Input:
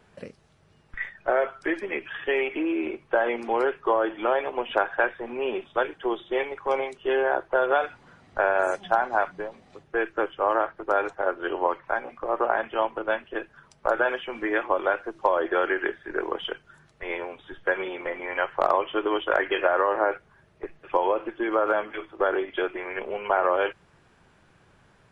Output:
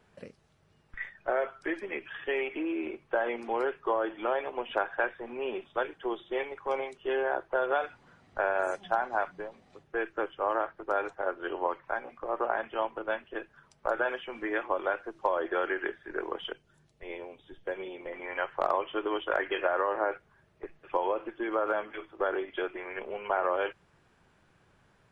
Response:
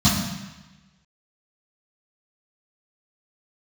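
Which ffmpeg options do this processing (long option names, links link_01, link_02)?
-filter_complex "[0:a]asettb=1/sr,asplit=3[link_01][link_02][link_03];[link_01]atrim=end=16.524[link_04];[link_02]atrim=start=16.52:end=18.13,asetpts=PTS-STARTPTS,afade=type=in:duration=0.004:curve=qsin,afade=type=out:start_time=1.606:duration=0.004:curve=qsin,equalizer=frequency=1400:width=1:gain=-11.5[link_05];[link_03]atrim=start=18.126[link_06];[link_04][link_05]acrossfade=duration=0.004:curve1=hsin:curve2=qsin[link_07];[link_07][link_06]acrossfade=duration=0.004:curve1=qsin:curve2=hsin,volume=-6dB"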